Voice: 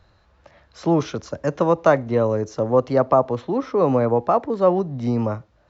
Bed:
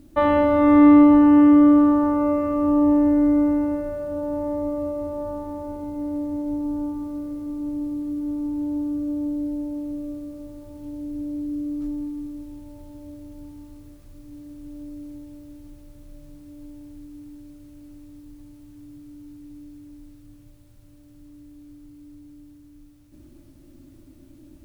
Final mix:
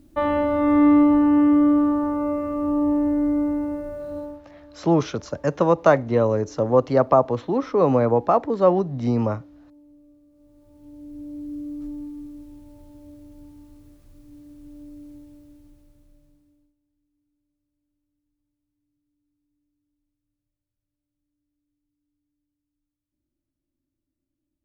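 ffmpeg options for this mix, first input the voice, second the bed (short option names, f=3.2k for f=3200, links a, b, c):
-filter_complex "[0:a]adelay=4000,volume=0dB[a];[1:a]volume=13.5dB,afade=t=out:st=4.18:d=0.23:silence=0.125893,afade=t=in:st=10.3:d=1.24:silence=0.141254,afade=t=out:st=15.18:d=1.57:silence=0.0334965[b];[a][b]amix=inputs=2:normalize=0"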